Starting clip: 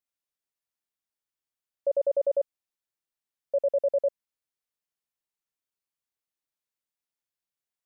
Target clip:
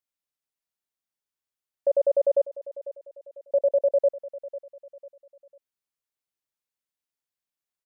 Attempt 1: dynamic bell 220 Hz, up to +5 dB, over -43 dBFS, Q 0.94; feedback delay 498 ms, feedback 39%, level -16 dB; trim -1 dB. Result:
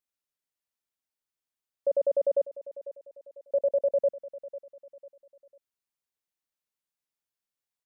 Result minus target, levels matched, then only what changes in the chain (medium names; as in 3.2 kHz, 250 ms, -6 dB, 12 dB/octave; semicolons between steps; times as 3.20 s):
250 Hz band +5.0 dB
change: dynamic bell 640 Hz, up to +5 dB, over -43 dBFS, Q 0.94